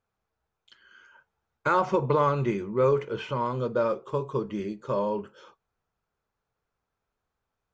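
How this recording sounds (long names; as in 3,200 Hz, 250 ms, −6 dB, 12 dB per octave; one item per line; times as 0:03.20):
background noise floor −84 dBFS
spectral slope −4.0 dB per octave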